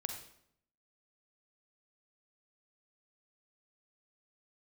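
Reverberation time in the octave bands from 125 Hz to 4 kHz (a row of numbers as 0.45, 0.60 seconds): 0.90, 0.85, 0.75, 0.65, 0.60, 0.55 seconds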